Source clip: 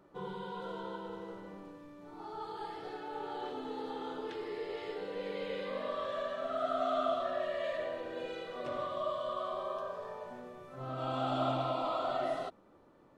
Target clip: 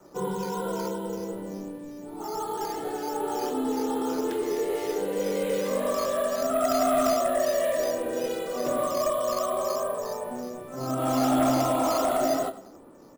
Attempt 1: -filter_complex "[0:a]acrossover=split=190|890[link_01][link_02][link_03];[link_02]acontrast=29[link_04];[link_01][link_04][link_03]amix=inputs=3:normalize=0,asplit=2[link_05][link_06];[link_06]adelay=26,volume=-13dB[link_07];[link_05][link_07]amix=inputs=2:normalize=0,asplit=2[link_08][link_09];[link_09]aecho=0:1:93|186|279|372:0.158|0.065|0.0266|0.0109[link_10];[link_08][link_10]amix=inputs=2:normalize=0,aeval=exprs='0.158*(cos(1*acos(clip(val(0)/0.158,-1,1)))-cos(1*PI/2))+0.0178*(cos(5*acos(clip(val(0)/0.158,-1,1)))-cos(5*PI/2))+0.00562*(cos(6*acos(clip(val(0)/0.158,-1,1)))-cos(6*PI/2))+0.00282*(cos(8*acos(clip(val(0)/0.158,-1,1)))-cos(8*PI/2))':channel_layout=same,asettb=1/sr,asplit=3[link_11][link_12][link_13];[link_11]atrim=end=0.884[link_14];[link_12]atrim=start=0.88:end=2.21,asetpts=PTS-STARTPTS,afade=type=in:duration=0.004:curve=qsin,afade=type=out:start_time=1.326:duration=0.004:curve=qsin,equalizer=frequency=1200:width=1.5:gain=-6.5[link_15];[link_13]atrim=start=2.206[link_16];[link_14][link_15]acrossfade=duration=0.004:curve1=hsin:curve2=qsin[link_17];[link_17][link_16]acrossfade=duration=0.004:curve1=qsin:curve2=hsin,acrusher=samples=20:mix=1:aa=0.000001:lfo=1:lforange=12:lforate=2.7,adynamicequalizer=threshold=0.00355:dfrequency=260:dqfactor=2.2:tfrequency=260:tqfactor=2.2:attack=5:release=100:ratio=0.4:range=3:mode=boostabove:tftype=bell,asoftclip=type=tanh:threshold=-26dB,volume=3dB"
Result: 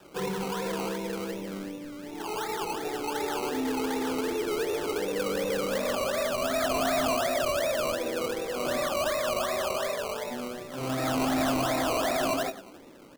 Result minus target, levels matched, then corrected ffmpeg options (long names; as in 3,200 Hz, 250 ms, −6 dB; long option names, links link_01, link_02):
soft clipping: distortion +16 dB; sample-and-hold swept by an LFO: distortion +13 dB
-filter_complex "[0:a]acrossover=split=190|890[link_01][link_02][link_03];[link_02]acontrast=29[link_04];[link_01][link_04][link_03]amix=inputs=3:normalize=0,asplit=2[link_05][link_06];[link_06]adelay=26,volume=-13dB[link_07];[link_05][link_07]amix=inputs=2:normalize=0,asplit=2[link_08][link_09];[link_09]aecho=0:1:93|186|279|372:0.158|0.065|0.0266|0.0109[link_10];[link_08][link_10]amix=inputs=2:normalize=0,aeval=exprs='0.158*(cos(1*acos(clip(val(0)/0.158,-1,1)))-cos(1*PI/2))+0.0178*(cos(5*acos(clip(val(0)/0.158,-1,1)))-cos(5*PI/2))+0.00562*(cos(6*acos(clip(val(0)/0.158,-1,1)))-cos(6*PI/2))+0.00282*(cos(8*acos(clip(val(0)/0.158,-1,1)))-cos(8*PI/2))':channel_layout=same,asettb=1/sr,asplit=3[link_11][link_12][link_13];[link_11]atrim=end=0.884[link_14];[link_12]atrim=start=0.88:end=2.21,asetpts=PTS-STARTPTS,afade=type=in:duration=0.004:curve=qsin,afade=type=out:start_time=1.326:duration=0.004:curve=qsin,equalizer=frequency=1200:width=1.5:gain=-6.5[link_15];[link_13]atrim=start=2.206[link_16];[link_14][link_15]acrossfade=duration=0.004:curve1=hsin:curve2=qsin[link_17];[link_17][link_16]acrossfade=duration=0.004:curve1=qsin:curve2=hsin,acrusher=samples=6:mix=1:aa=0.000001:lfo=1:lforange=3.6:lforate=2.7,adynamicequalizer=threshold=0.00355:dfrequency=260:dqfactor=2.2:tfrequency=260:tqfactor=2.2:attack=5:release=100:ratio=0.4:range=3:mode=boostabove:tftype=bell,asoftclip=type=tanh:threshold=-15.5dB,volume=3dB"